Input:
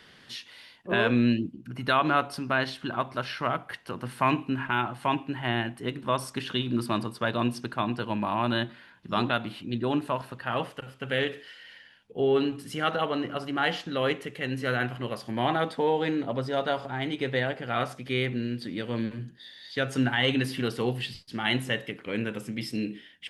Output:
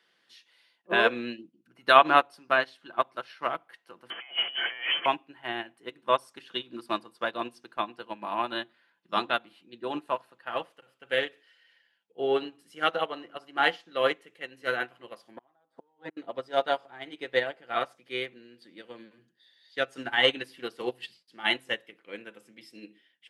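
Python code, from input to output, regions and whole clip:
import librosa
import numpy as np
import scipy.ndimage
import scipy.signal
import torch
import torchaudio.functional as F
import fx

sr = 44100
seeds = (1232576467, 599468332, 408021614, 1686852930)

y = fx.chain(x, sr, fx.zero_step(step_db=-29.0),
    fx.over_compress(threshold_db=-30.0, ratio=-1.0),
    fx.freq_invert(carrier_hz=3200), at=(4.1, 5.06))
y = fx.chain(y, sr, fx.high_shelf_res(hz=1800.0, db=-7.5, q=1.5),
    fx.comb(ms=7.4, depth=0.63),
    fx.gate_flip(shuts_db=-17.0, range_db=-30), at=(15.36, 16.17))
y = scipy.signal.sosfilt(scipy.signal.butter(2, 340.0, 'highpass', fs=sr, output='sos'), y)
y = y + 0.32 * np.pad(y, (int(5.9 * sr / 1000.0), 0))[:len(y)]
y = fx.upward_expand(y, sr, threshold_db=-36.0, expansion=2.5)
y = F.gain(torch.from_numpy(y), 8.5).numpy()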